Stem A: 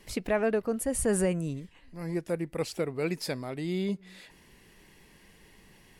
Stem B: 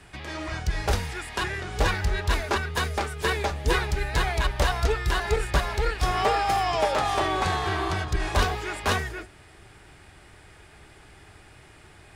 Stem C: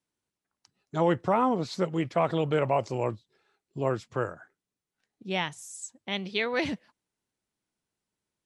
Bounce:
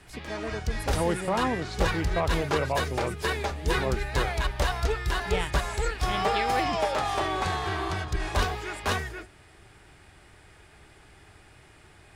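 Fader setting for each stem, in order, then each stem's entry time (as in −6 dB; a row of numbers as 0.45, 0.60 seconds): −9.5, −3.0, −3.0 decibels; 0.00, 0.00, 0.00 seconds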